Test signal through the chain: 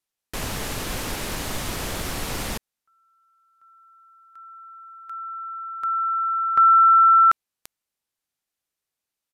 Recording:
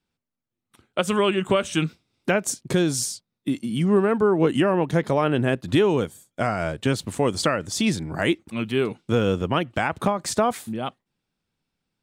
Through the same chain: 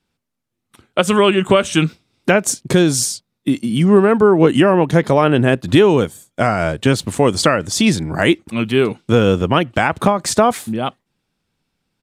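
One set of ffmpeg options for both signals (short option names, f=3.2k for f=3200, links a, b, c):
-af "aresample=32000,aresample=44100,volume=8dB"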